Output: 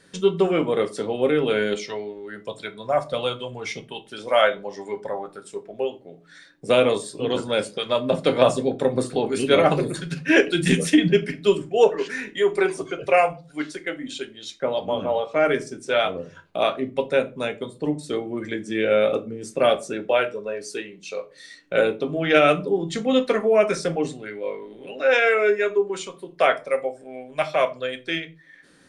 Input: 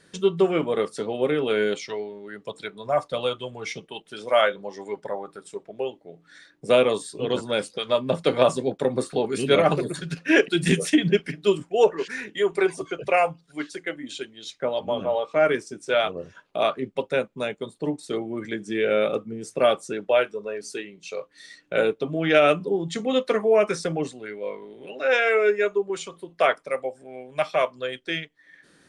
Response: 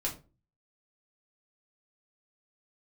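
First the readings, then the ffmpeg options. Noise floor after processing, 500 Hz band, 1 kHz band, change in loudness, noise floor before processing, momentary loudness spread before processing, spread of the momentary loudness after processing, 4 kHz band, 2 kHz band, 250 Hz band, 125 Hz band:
-51 dBFS, +1.5 dB, +2.0 dB, +1.5 dB, -60 dBFS, 15 LU, 15 LU, +1.5 dB, +2.0 dB, +2.5 dB, +2.0 dB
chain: -filter_complex "[0:a]asplit=2[a][b];[1:a]atrim=start_sample=2205[c];[b][c]afir=irnorm=-1:irlink=0,volume=-7dB[d];[a][d]amix=inputs=2:normalize=0,volume=-1.5dB"

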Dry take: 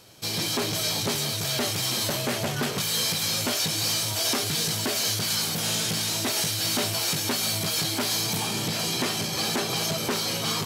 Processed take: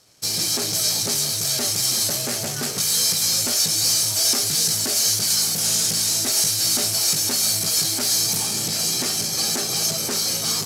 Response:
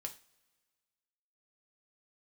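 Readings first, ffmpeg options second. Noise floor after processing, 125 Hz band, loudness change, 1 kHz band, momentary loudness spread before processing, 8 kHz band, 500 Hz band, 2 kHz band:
-26 dBFS, -2.0 dB, +6.0 dB, -2.5 dB, 2 LU, +9.5 dB, -2.0 dB, -2.0 dB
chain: -filter_complex "[0:a]bandreject=f=1k:w=8.8,asplit=2[a][b];[b]acrusher=bits=4:mix=0:aa=0.000001,volume=-10.5dB[c];[a][c]amix=inputs=2:normalize=0,aexciter=amount=5.4:drive=4.3:freq=4.6k,aeval=exprs='sgn(val(0))*max(abs(val(0))-0.00422,0)':c=same,adynamicsmooth=sensitivity=7:basefreq=6k,volume=-4dB"

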